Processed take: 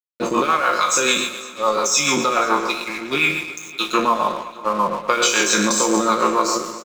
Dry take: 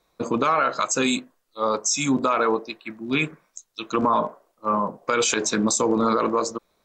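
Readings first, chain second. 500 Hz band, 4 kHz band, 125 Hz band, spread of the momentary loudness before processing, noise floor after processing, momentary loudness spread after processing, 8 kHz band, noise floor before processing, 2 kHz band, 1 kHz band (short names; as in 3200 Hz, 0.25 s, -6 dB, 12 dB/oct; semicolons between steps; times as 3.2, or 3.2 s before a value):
+2.5 dB, +8.5 dB, -1.0 dB, 10 LU, -38 dBFS, 8 LU, +6.0 dB, -69 dBFS, +8.0 dB, +5.0 dB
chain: spectral trails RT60 0.74 s; HPF 720 Hz 6 dB/oct; high shelf 4900 Hz -5.5 dB; comb 5.6 ms, depth 57%; in parallel at +1.5 dB: negative-ratio compressor -26 dBFS; on the sum: rotary speaker horn 7 Hz; crossover distortion -38 dBFS; on a send: echo with dull and thin repeats by turns 0.123 s, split 1800 Hz, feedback 74%, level -13 dB; on the sum: gain +3 dB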